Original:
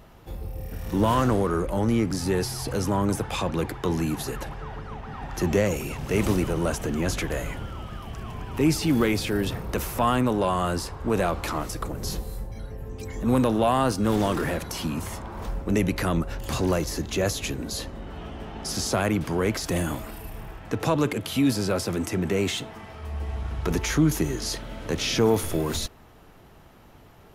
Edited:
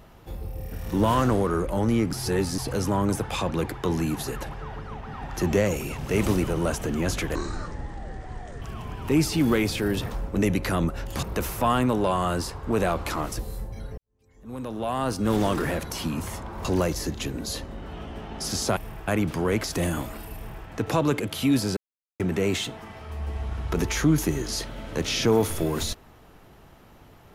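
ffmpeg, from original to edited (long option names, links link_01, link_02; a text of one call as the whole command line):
ffmpeg -i in.wav -filter_complex "[0:a]asplit=15[link_01][link_02][link_03][link_04][link_05][link_06][link_07][link_08][link_09][link_10][link_11][link_12][link_13][link_14][link_15];[link_01]atrim=end=2.132[link_16];[link_02]atrim=start=2.128:end=2.582,asetpts=PTS-STARTPTS,areverse[link_17];[link_03]atrim=start=2.578:end=7.354[link_18];[link_04]atrim=start=7.35:end=8.11,asetpts=PTS-STARTPTS,asetrate=26460,aresample=44100[link_19];[link_05]atrim=start=8.106:end=9.602[link_20];[link_06]atrim=start=15.438:end=16.562[link_21];[link_07]atrim=start=9.598:end=11.762[link_22];[link_08]atrim=start=12.178:end=12.77,asetpts=PTS-STARTPTS,afade=type=out:start_time=0.588:duration=0.004:curve=hsin[link_23];[link_09]atrim=start=12.77:end=15.442,asetpts=PTS-STARTPTS,afade=type=in:duration=1.35:curve=qua[link_24];[link_10]atrim=start=16.558:end=17.132[link_25];[link_11]atrim=start=17.458:end=19.012[link_26];[link_12]atrim=start=20.278:end=20.592[link_27];[link_13]atrim=start=19.008:end=21.7,asetpts=PTS-STARTPTS,afade=type=out:start_time=2.688:duration=0.004:curve=hsin[link_28];[link_14]atrim=start=21.7:end=22.13,asetpts=PTS-STARTPTS,volume=0[link_29];[link_15]atrim=start=22.13,asetpts=PTS-STARTPTS,afade=type=in:duration=0.004:curve=hsin[link_30];[link_16][link_17]acrossfade=duration=0.004:curve1=hsin:curve2=hsin[link_31];[link_31][link_18]acrossfade=duration=0.004:curve1=hsin:curve2=hsin[link_32];[link_32][link_19]acrossfade=duration=0.004:curve1=hsin:curve2=hsin[link_33];[link_33][link_20]acrossfade=duration=0.004:curve1=hsin:curve2=hsin[link_34];[link_34][link_21]acrossfade=duration=0.004:curve1=hsin:curve2=hsin[link_35];[link_35][link_22]acrossfade=duration=0.004:curve1=hsin:curve2=hsin[link_36];[link_23][link_24]concat=n=2:v=0:a=1[link_37];[link_36][link_37]acrossfade=duration=0.004:curve1=hsin:curve2=hsin[link_38];[link_38][link_25]acrossfade=duration=0.004:curve1=hsin:curve2=hsin[link_39];[link_39][link_26]acrossfade=duration=0.004:curve1=hsin:curve2=hsin[link_40];[link_40][link_27]acrossfade=duration=0.004:curve1=hsin:curve2=hsin[link_41];[link_28][link_29][link_30]concat=n=3:v=0:a=1[link_42];[link_41][link_42]acrossfade=duration=0.004:curve1=hsin:curve2=hsin" out.wav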